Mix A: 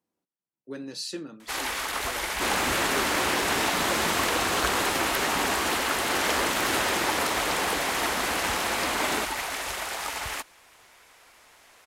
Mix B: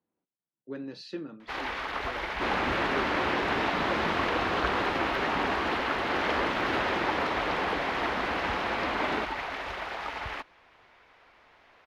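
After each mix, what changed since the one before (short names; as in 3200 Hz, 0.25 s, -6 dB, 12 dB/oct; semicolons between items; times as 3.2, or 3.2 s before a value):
master: add air absorption 300 m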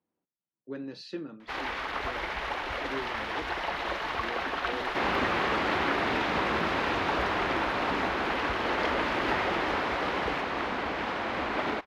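second sound: entry +2.55 s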